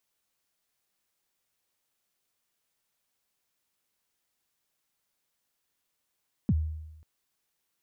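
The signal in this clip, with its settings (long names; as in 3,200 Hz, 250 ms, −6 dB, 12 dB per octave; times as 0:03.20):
synth kick length 0.54 s, from 260 Hz, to 78 Hz, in 44 ms, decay 0.98 s, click off, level −19 dB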